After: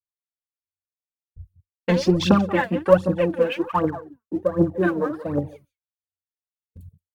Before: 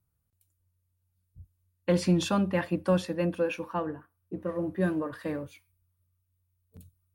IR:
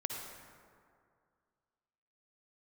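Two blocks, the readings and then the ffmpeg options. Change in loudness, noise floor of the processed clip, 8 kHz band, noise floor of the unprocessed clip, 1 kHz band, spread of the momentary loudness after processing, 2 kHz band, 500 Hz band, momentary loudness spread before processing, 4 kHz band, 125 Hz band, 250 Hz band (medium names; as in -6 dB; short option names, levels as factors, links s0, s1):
+8.0 dB, under -85 dBFS, no reading, -77 dBFS, +10.0 dB, 10 LU, +8.5 dB, +9.5 dB, 12 LU, +7.0 dB, +6.0 dB, +7.0 dB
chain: -af "aecho=1:1:178:0.188,afwtdn=0.00891,agate=range=0.0224:threshold=0.00178:ratio=3:detection=peak,aphaser=in_gain=1:out_gain=1:delay=4.7:decay=0.74:speed=1.3:type=triangular,volume=2"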